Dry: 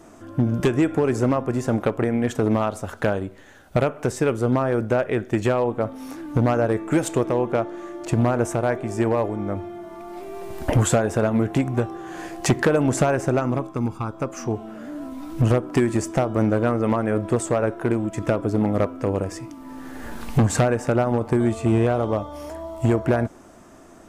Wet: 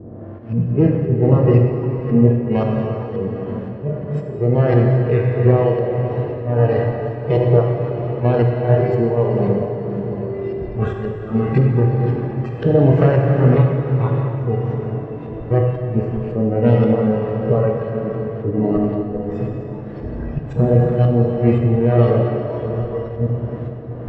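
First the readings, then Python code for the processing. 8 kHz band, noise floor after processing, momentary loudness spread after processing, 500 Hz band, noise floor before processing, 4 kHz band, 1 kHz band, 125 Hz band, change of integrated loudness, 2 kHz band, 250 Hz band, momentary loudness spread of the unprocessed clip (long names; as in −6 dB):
below −30 dB, −30 dBFS, 11 LU, +4.5 dB, −47 dBFS, can't be measured, 0.0 dB, +9.0 dB, +4.5 dB, −3.5 dB, +3.0 dB, 14 LU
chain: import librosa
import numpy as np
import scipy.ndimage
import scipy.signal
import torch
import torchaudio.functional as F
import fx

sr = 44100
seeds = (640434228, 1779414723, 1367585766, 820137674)

p1 = fx.bin_compress(x, sr, power=0.2)
p2 = scipy.signal.sosfilt(scipy.signal.butter(2, 65.0, 'highpass', fs=sr, output='sos'), p1)
p3 = fx.auto_swell(p2, sr, attack_ms=135.0)
p4 = fx.low_shelf(p3, sr, hz=130.0, db=11.5)
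p5 = fx.sample_hold(p4, sr, seeds[0], rate_hz=2400.0, jitter_pct=0)
p6 = p4 + (p5 * 10.0 ** (-5.0 / 20.0))
p7 = fx.noise_reduce_blind(p6, sr, reduce_db=21)
p8 = p7 + fx.echo_single(p7, sr, ms=289, db=-16.0, dry=0)
p9 = fx.filter_lfo_lowpass(p8, sr, shape='saw_up', hz=1.9, low_hz=380.0, high_hz=3100.0, q=0.7)
p10 = scipy.signal.sosfilt(scipy.signal.butter(2, 4100.0, 'lowpass', fs=sr, output='sos'), p9)
p11 = fx.rev_plate(p10, sr, seeds[1], rt60_s=4.4, hf_ratio=0.85, predelay_ms=0, drr_db=-0.5)
p12 = fx.tremolo_shape(p11, sr, shape='triangle', hz=1.5, depth_pct=35)
y = p12 * 10.0 ** (-4.5 / 20.0)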